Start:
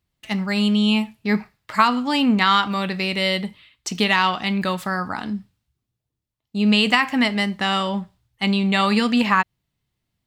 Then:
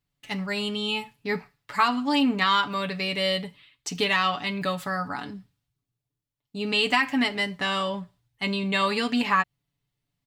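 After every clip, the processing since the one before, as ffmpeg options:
ffmpeg -i in.wav -af "aecho=1:1:7:0.74,volume=-6dB" out.wav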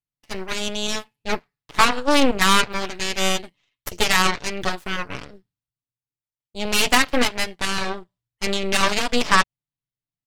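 ffmpeg -i in.wav -af "aeval=exprs='0.398*(cos(1*acos(clip(val(0)/0.398,-1,1)))-cos(1*PI/2))+0.00316*(cos(3*acos(clip(val(0)/0.398,-1,1)))-cos(3*PI/2))+0.0501*(cos(7*acos(clip(val(0)/0.398,-1,1)))-cos(7*PI/2))+0.0708*(cos(8*acos(clip(val(0)/0.398,-1,1)))-cos(8*PI/2))':channel_layout=same,volume=5dB" out.wav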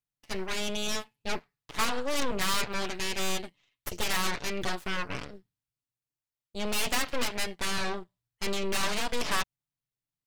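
ffmpeg -i in.wav -af "asoftclip=type=tanh:threshold=-20dB,volume=-1.5dB" out.wav

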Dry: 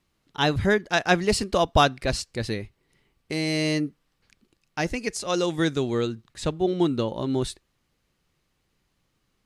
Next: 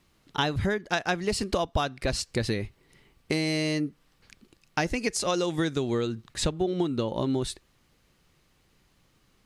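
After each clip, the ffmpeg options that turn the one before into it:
ffmpeg -i in.wav -af "acompressor=threshold=-30dB:ratio=12,volume=7dB" out.wav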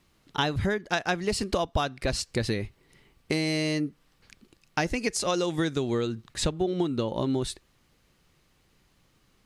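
ffmpeg -i in.wav -af anull out.wav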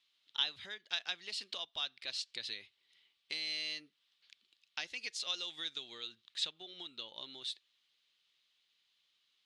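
ffmpeg -i in.wav -af "bandpass=frequency=3500:width_type=q:width=3.6:csg=0,volume=1dB" out.wav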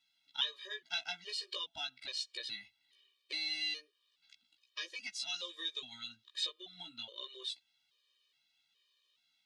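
ffmpeg -i in.wav -af "flanger=delay=15:depth=2.1:speed=0.38,afftfilt=real='re*gt(sin(2*PI*1.2*pts/sr)*(1-2*mod(floor(b*sr/1024/320),2)),0)':imag='im*gt(sin(2*PI*1.2*pts/sr)*(1-2*mod(floor(b*sr/1024/320),2)),0)':win_size=1024:overlap=0.75,volume=6dB" out.wav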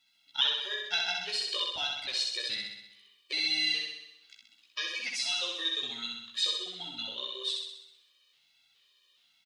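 ffmpeg -i in.wav -af "aecho=1:1:64|128|192|256|320|384|448|512|576:0.708|0.425|0.255|0.153|0.0917|0.055|0.033|0.0198|0.0119,volume=6.5dB" out.wav

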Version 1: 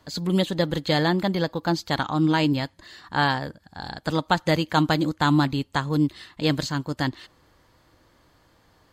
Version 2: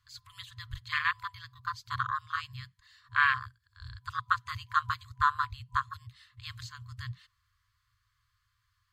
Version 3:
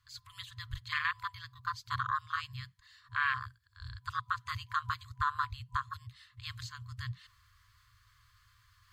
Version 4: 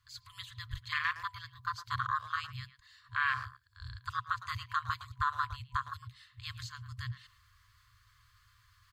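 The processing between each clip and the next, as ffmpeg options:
ffmpeg -i in.wav -af "afwtdn=0.0562,afftfilt=real='re*(1-between(b*sr/4096,120,1000))':imag='im*(1-between(b*sr/4096,120,1000))':win_size=4096:overlap=0.75,equalizer=frequency=170:width=2.6:gain=14,volume=2dB" out.wav
ffmpeg -i in.wav -af "alimiter=limit=-20dB:level=0:latency=1:release=88,areverse,acompressor=mode=upward:threshold=-54dB:ratio=2.5,areverse" out.wav
ffmpeg -i in.wav -filter_complex "[0:a]asplit=2[link_01][link_02];[link_02]adelay=110,highpass=300,lowpass=3400,asoftclip=type=hard:threshold=-28dB,volume=-13dB[link_03];[link_01][link_03]amix=inputs=2:normalize=0" out.wav

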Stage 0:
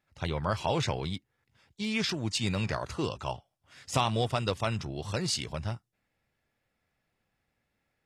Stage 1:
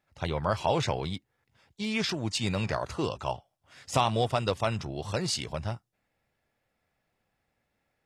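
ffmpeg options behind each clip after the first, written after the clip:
ffmpeg -i in.wav -af "equalizer=frequency=680:width=1:gain=4" out.wav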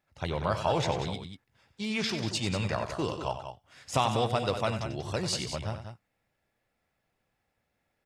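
ffmpeg -i in.wav -af "aecho=1:1:93.29|189.5:0.316|0.355,volume=-1.5dB" out.wav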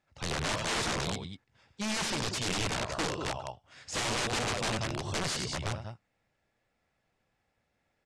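ffmpeg -i in.wav -af "aeval=exprs='(mod(21.1*val(0)+1,2)-1)/21.1':channel_layout=same,lowpass=frequency=8600:width=0.5412,lowpass=frequency=8600:width=1.3066,volume=1dB" out.wav

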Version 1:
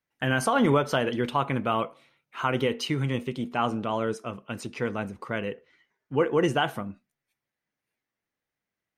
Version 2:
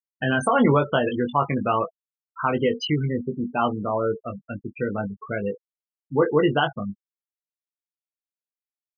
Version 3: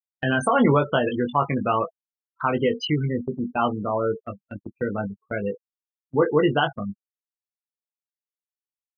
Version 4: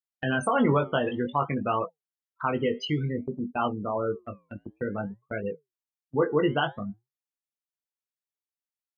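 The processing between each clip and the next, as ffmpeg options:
ffmpeg -i in.wav -filter_complex "[0:a]afftfilt=real='re*gte(hypot(re,im),0.0631)':imag='im*gte(hypot(re,im),0.0631)':win_size=1024:overlap=0.75,asplit=2[link_01][link_02];[link_02]adelay=20,volume=-6dB[link_03];[link_01][link_03]amix=inputs=2:normalize=0,volume=3dB" out.wav
ffmpeg -i in.wav -af "agate=range=-33dB:threshold=-31dB:ratio=16:detection=peak" out.wav
ffmpeg -i in.wav -af "flanger=delay=2.1:depth=7.5:regen=-86:speed=0.55:shape=triangular" out.wav

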